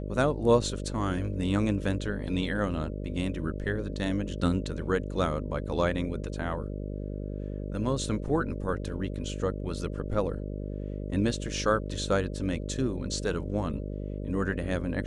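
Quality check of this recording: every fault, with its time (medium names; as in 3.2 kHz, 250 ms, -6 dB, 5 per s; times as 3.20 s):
buzz 50 Hz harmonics 12 -35 dBFS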